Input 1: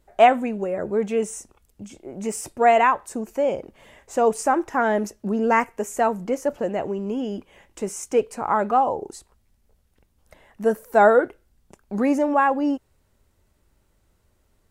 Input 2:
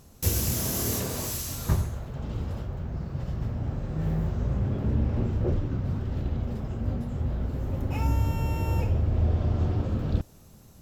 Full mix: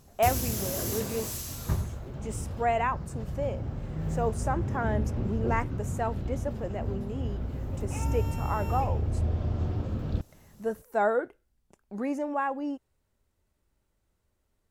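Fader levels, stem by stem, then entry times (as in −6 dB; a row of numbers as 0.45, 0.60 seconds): −10.5, −4.0 decibels; 0.00, 0.00 seconds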